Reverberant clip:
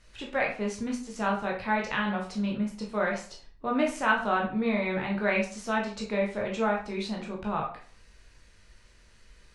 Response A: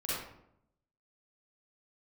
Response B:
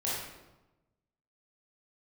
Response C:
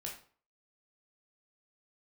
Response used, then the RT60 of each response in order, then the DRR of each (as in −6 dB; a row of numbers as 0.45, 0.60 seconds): C; 0.75, 1.0, 0.45 seconds; −9.5, −8.0, −2.0 decibels